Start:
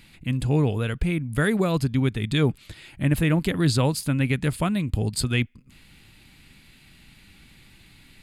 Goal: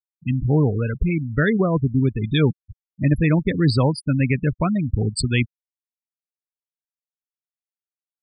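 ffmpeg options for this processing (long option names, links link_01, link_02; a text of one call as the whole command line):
ffmpeg -i in.wav -filter_complex "[0:a]asplit=3[link_01][link_02][link_03];[link_01]afade=type=out:start_time=1.56:duration=0.02[link_04];[link_02]lowpass=2100,afade=type=in:start_time=1.56:duration=0.02,afade=type=out:start_time=2.06:duration=0.02[link_05];[link_03]afade=type=in:start_time=2.06:duration=0.02[link_06];[link_04][link_05][link_06]amix=inputs=3:normalize=0,afftfilt=real='re*gte(hypot(re,im),0.0794)':imag='im*gte(hypot(re,im),0.0794)':win_size=1024:overlap=0.75,volume=3.5dB" out.wav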